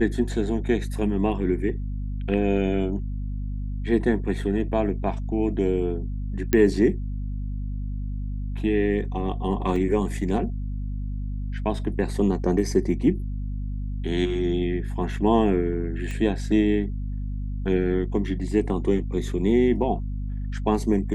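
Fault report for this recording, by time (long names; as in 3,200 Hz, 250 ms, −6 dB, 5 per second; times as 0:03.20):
mains hum 50 Hz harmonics 5 −29 dBFS
0:06.53: click −7 dBFS
0:09.76: drop-out 2.4 ms
0:16.11: click −21 dBFS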